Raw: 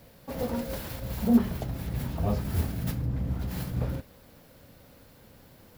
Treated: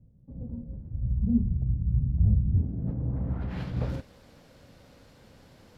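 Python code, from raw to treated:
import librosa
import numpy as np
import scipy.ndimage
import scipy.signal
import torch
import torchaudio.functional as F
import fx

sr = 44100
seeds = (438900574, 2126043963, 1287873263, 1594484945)

y = fx.filter_sweep_lowpass(x, sr, from_hz=150.0, to_hz=6900.0, start_s=2.43, end_s=3.95, q=0.93)
y = fx.low_shelf(y, sr, hz=130.0, db=10.5, at=(0.93, 2.58))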